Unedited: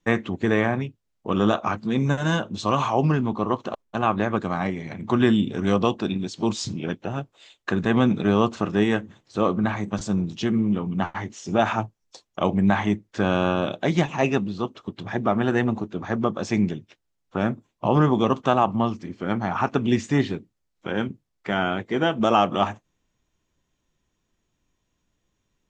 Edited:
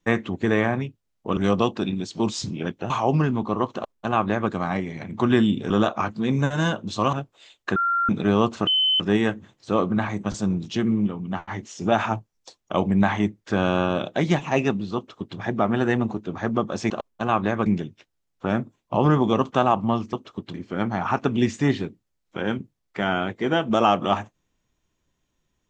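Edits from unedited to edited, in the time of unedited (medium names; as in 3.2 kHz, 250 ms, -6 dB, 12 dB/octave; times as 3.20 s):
1.37–2.80 s: swap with 5.60–7.13 s
3.64–4.40 s: copy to 16.57 s
7.76–8.09 s: bleep 1.38 kHz -19 dBFS
8.67 s: add tone 3.05 kHz -17 dBFS 0.33 s
10.74–11.18 s: gain -4 dB
14.63–15.04 s: copy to 19.04 s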